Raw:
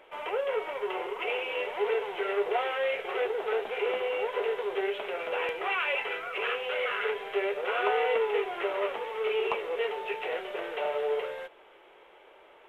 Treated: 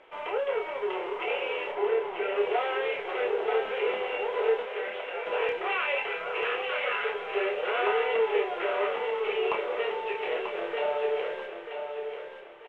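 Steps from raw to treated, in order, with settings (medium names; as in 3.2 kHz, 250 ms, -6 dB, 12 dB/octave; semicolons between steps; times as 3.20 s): 1.72–2.36 s: treble shelf 3.2 kHz -12 dB; 4.62–5.26 s: rippled Chebyshev high-pass 450 Hz, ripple 6 dB; distance through air 82 m; doubling 29 ms -5 dB; feedback delay 939 ms, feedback 34%, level -7 dB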